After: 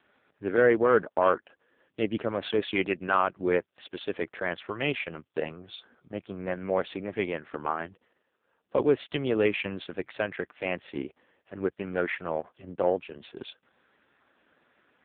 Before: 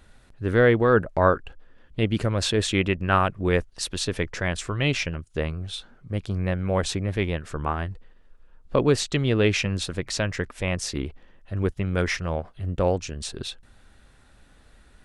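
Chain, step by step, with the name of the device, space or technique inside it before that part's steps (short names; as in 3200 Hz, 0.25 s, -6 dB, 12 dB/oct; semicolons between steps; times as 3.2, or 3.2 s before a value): telephone (BPF 280–3600 Hz; soft clip -10 dBFS, distortion -19 dB; AMR-NB 5.15 kbps 8000 Hz)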